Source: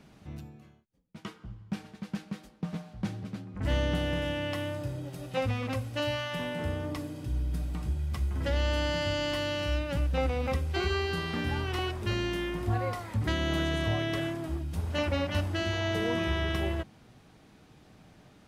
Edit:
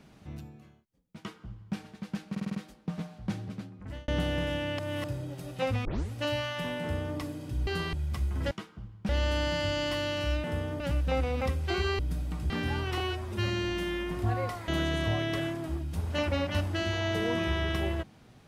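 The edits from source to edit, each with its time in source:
0:01.18–0:01.76: duplicate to 0:08.51
0:02.30: stutter 0.05 s, 6 plays
0:03.28–0:03.83: fade out
0:04.54–0:04.79: reverse
0:05.60: tape start 0.27 s
0:06.56–0:06.92: duplicate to 0:09.86
0:07.42–0:07.93: swap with 0:11.05–0:11.31
0:11.81–0:12.55: time-stretch 1.5×
0:13.12–0:13.48: remove

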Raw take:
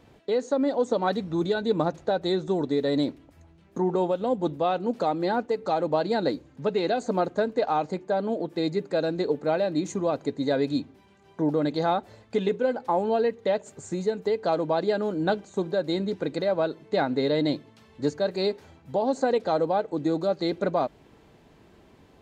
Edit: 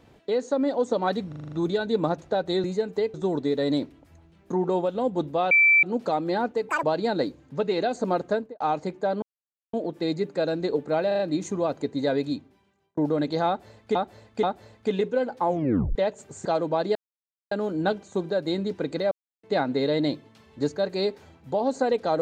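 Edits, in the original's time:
0:01.28: stutter 0.04 s, 7 plays
0:04.77: insert tone 2,330 Hz −14 dBFS 0.32 s
0:05.63–0:05.90: play speed 189%
0:07.38–0:07.67: fade out and dull
0:08.29: splice in silence 0.51 s
0:09.63: stutter 0.04 s, 4 plays
0:10.57–0:11.41: fade out
0:11.91–0:12.39: repeat, 3 plays
0:12.96: tape stop 0.47 s
0:13.93–0:14.43: move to 0:02.40
0:14.93: splice in silence 0.56 s
0:16.53–0:16.85: silence

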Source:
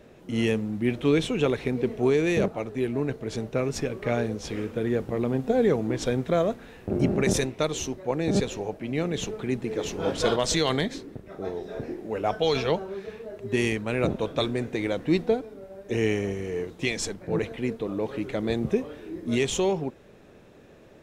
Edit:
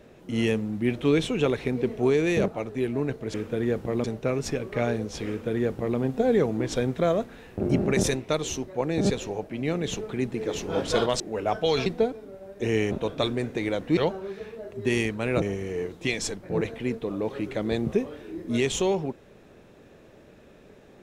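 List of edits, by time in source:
0:04.58–0:05.28: duplicate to 0:03.34
0:10.50–0:11.98: remove
0:12.64–0:14.09: swap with 0:15.15–0:16.20

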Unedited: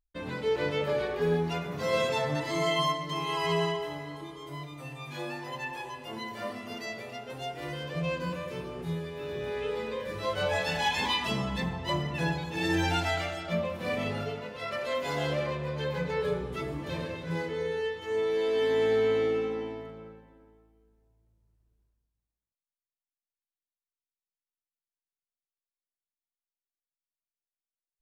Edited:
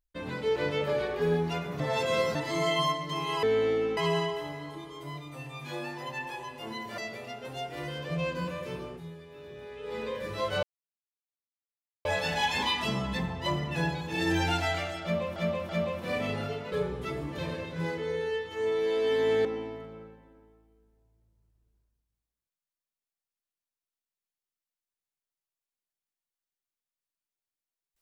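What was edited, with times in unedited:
0:01.80–0:02.35: reverse
0:06.44–0:06.83: remove
0:08.70–0:09.85: duck −10 dB, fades 0.18 s
0:10.48: splice in silence 1.42 s
0:13.46–0:13.79: repeat, 3 plays
0:14.49–0:16.23: remove
0:18.96–0:19.50: move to 0:03.43

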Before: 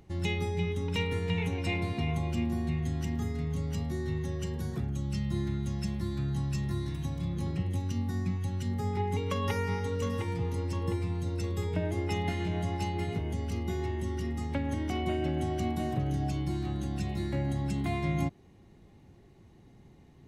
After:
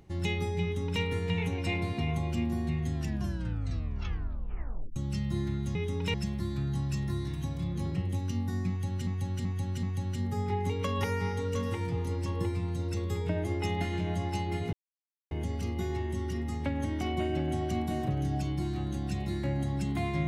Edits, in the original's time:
0:00.63–0:01.02: duplicate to 0:05.75
0:02.94: tape stop 2.02 s
0:08.30–0:08.68: repeat, 4 plays
0:13.20: splice in silence 0.58 s

